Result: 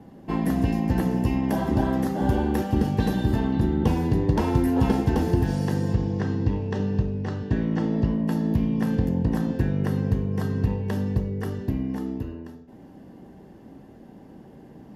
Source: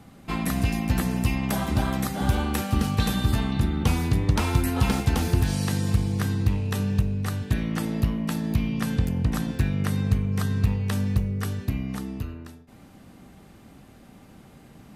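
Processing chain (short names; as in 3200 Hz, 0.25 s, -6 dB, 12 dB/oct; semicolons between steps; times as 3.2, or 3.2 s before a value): 5.93–8.14 LPF 6500 Hz 24 dB/oct; reverb RT60 0.60 s, pre-delay 3 ms, DRR 10 dB; gain -7.5 dB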